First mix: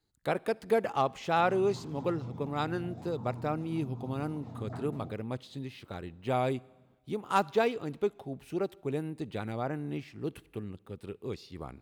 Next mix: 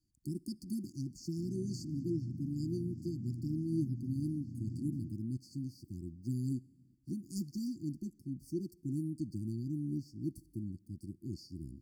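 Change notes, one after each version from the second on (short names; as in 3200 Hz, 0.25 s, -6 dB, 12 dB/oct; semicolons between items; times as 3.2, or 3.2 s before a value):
master: add brick-wall FIR band-stop 360–4400 Hz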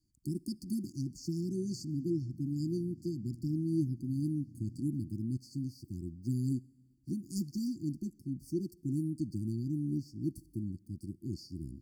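speech +3.0 dB; background -8.5 dB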